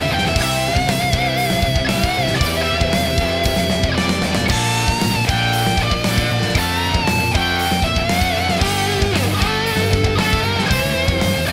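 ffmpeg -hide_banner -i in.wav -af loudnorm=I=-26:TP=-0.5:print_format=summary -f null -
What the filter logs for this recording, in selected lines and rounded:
Input Integrated:    -17.0 LUFS
Input True Peak:      -5.4 dBTP
Input LRA:             0.3 LU
Input Threshold:     -27.0 LUFS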